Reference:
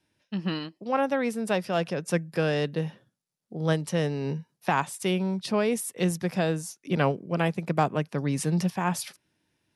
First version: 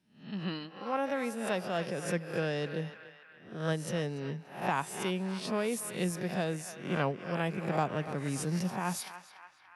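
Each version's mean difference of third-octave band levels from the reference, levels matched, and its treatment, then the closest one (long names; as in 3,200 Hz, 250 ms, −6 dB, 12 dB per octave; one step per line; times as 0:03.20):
6.0 dB: peak hold with a rise ahead of every peak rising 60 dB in 0.46 s
on a send: feedback echo with a band-pass in the loop 289 ms, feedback 65%, band-pass 1,700 Hz, level −10 dB
on the sum: level −7.5 dB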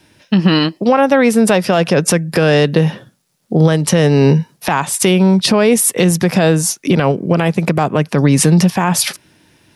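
3.0 dB: downward compressor, threshold −29 dBFS, peak gain reduction 12 dB
boost into a limiter +24 dB
level −1 dB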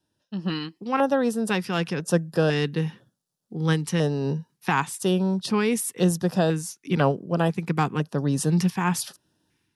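1.5 dB: automatic gain control gain up to 7 dB
auto-filter notch square 1 Hz 610–2,200 Hz
level −2 dB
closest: third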